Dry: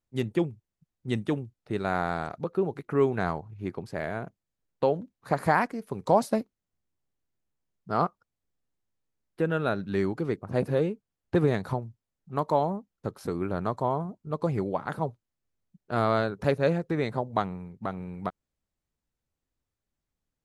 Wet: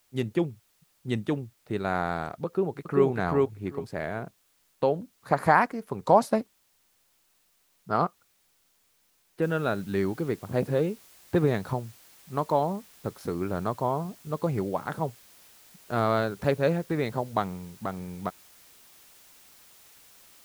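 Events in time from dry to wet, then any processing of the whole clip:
2.46–3.06 echo throw 0.39 s, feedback 15%, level -1 dB
5.32–7.96 bell 1100 Hz +4.5 dB 1.7 oct
9.42 noise floor step -68 dB -55 dB

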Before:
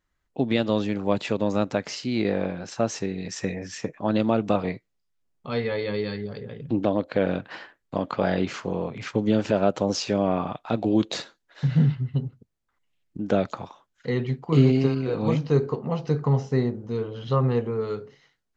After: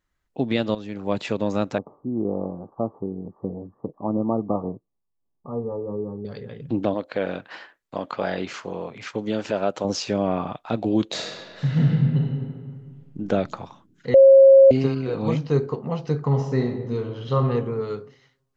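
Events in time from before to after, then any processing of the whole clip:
0.75–1.2 fade in, from -14 dB
1.78–6.25 rippled Chebyshev low-pass 1200 Hz, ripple 3 dB
6.94–9.85 low shelf 260 Hz -10 dB
11.07–13.19 reverb throw, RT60 1.9 s, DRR -1.5 dB
14.14–14.71 bleep 541 Hz -7 dBFS
16.25–17.47 reverb throw, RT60 1.1 s, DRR 4.5 dB

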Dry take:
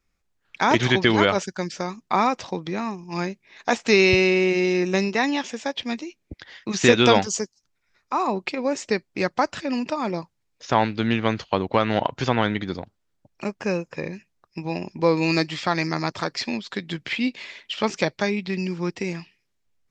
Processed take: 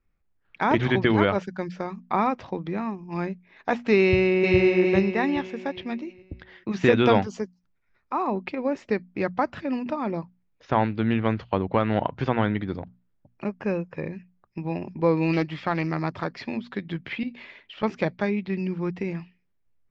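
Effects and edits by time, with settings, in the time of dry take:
4.02–4.58 echo throw 0.41 s, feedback 35%, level -0.5 dB
15.33–15.99 Doppler distortion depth 0.17 ms
17.23–17.83 compressor, threshold -30 dBFS
whole clip: LPF 2400 Hz 12 dB/oct; low shelf 230 Hz +7 dB; notches 60/120/180/240 Hz; gain -3.5 dB

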